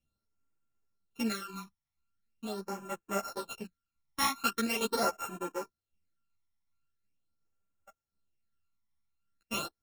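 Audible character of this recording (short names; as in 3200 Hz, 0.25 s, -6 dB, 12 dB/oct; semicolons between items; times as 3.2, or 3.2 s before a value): a buzz of ramps at a fixed pitch in blocks of 32 samples; phasing stages 12, 0.42 Hz, lowest notch 460–4500 Hz; tremolo saw down 2.7 Hz, depth 35%; a shimmering, thickened sound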